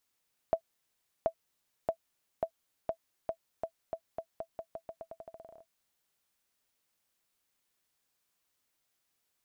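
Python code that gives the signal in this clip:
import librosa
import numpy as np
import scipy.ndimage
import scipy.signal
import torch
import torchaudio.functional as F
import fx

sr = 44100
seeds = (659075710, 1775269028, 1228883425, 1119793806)

y = fx.bouncing_ball(sr, first_gap_s=0.73, ratio=0.86, hz=658.0, decay_ms=80.0, level_db=-16.5)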